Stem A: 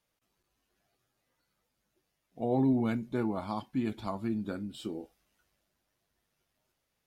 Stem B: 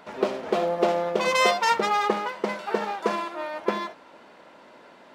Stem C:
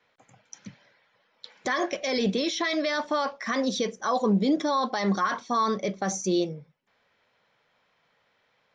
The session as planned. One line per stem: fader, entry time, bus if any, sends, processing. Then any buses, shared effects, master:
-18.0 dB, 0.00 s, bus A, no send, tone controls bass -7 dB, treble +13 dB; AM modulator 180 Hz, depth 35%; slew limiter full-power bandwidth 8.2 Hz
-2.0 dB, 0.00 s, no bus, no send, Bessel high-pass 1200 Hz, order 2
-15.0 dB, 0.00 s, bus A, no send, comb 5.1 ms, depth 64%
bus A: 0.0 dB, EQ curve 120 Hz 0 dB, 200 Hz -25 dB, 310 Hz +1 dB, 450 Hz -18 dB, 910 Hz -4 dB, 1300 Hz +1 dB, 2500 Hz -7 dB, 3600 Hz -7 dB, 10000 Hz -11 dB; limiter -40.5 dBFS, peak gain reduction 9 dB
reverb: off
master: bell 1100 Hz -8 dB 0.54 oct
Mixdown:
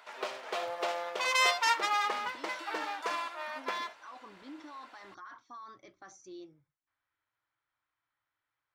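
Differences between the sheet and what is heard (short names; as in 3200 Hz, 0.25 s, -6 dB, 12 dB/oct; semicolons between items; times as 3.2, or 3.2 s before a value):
stem A: muted; stem C: missing comb 5.1 ms, depth 64%; master: missing bell 1100 Hz -8 dB 0.54 oct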